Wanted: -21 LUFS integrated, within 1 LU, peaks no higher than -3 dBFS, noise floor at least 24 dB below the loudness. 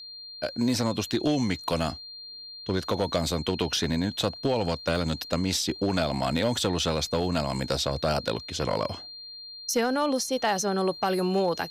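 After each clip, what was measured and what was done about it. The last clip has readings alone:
clipped 0.5%; flat tops at -17.0 dBFS; steady tone 4200 Hz; tone level -40 dBFS; loudness -27.5 LUFS; peak -17.0 dBFS; loudness target -21.0 LUFS
-> clip repair -17 dBFS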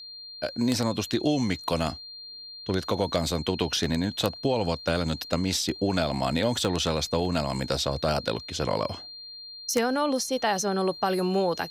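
clipped 0.0%; steady tone 4200 Hz; tone level -40 dBFS
-> notch 4200 Hz, Q 30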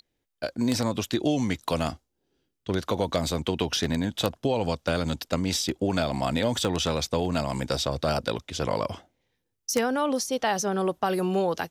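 steady tone none; loudness -27.5 LUFS; peak -8.0 dBFS; loudness target -21.0 LUFS
-> gain +6.5 dB; limiter -3 dBFS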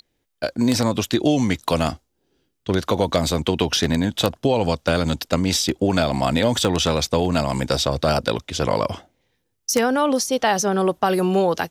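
loudness -21.0 LUFS; peak -3.0 dBFS; noise floor -73 dBFS

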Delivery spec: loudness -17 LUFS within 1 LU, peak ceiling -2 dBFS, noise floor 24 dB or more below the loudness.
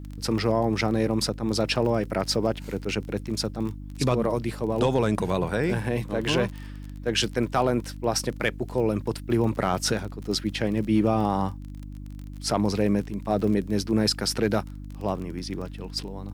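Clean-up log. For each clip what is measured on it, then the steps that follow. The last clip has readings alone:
ticks 28/s; hum 50 Hz; harmonics up to 300 Hz; hum level -35 dBFS; loudness -26.0 LUFS; peak -11.5 dBFS; loudness target -17.0 LUFS
-> de-click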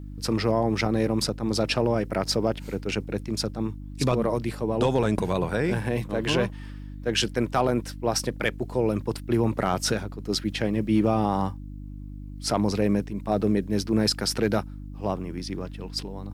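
ticks 0.12/s; hum 50 Hz; harmonics up to 300 Hz; hum level -35 dBFS
-> de-hum 50 Hz, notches 6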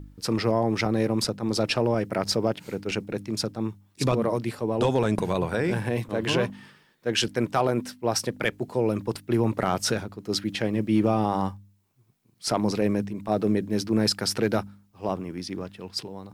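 hum none; loudness -26.5 LUFS; peak -10.5 dBFS; loudness target -17.0 LUFS
-> gain +9.5 dB; limiter -2 dBFS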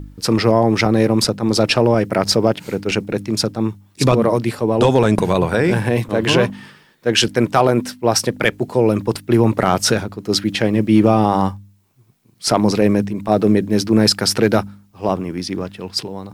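loudness -17.0 LUFS; peak -2.0 dBFS; noise floor -53 dBFS

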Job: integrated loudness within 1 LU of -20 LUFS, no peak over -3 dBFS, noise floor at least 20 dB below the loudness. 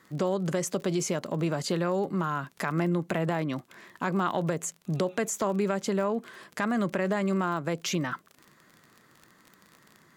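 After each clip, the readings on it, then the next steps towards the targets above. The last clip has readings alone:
ticks 34/s; loudness -29.5 LUFS; peak -14.0 dBFS; loudness target -20.0 LUFS
-> de-click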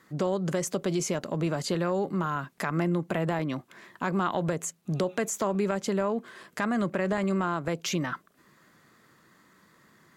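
ticks 0/s; loudness -29.5 LUFS; peak -14.0 dBFS; loudness target -20.0 LUFS
-> gain +9.5 dB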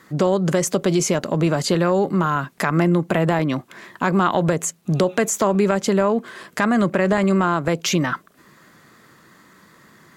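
loudness -20.0 LUFS; peak -4.5 dBFS; noise floor -53 dBFS

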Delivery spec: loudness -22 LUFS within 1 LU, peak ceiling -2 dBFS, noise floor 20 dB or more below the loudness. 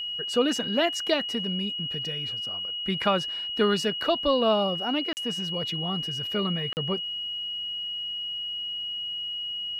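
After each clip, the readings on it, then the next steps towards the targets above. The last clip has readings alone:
dropouts 2; longest dropout 39 ms; steady tone 2900 Hz; tone level -30 dBFS; loudness -27.0 LUFS; peak -11.5 dBFS; loudness target -22.0 LUFS
-> interpolate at 5.13/6.73, 39 ms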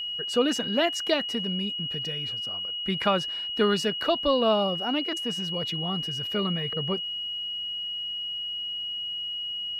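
dropouts 0; steady tone 2900 Hz; tone level -30 dBFS
-> notch 2900 Hz, Q 30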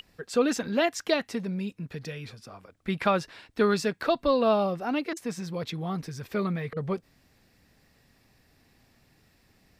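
steady tone none; loudness -28.5 LUFS; peak -12.5 dBFS; loudness target -22.0 LUFS
-> gain +6.5 dB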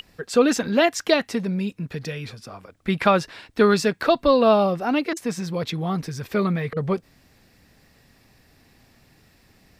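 loudness -22.0 LUFS; peak -6.0 dBFS; noise floor -58 dBFS

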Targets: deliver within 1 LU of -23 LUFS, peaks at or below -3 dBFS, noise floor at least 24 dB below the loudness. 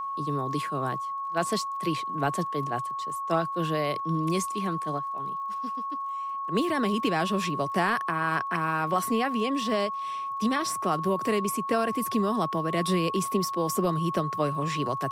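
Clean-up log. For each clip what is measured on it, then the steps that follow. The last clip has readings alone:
ticks 27/s; steady tone 1100 Hz; tone level -30 dBFS; loudness -28.0 LUFS; peak -13.5 dBFS; loudness target -23.0 LUFS
-> de-click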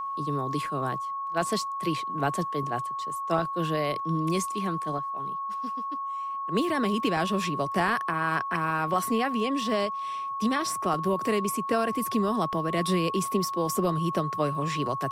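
ticks 0.066/s; steady tone 1100 Hz; tone level -30 dBFS
-> notch 1100 Hz, Q 30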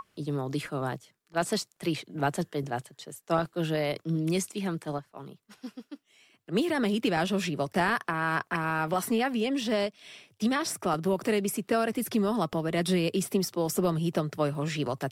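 steady tone none; loudness -29.5 LUFS; peak -14.0 dBFS; loudness target -23.0 LUFS
-> gain +6.5 dB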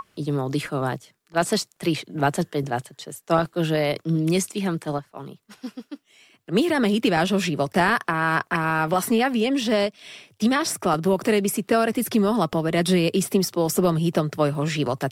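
loudness -23.0 LUFS; peak -7.5 dBFS; noise floor -65 dBFS

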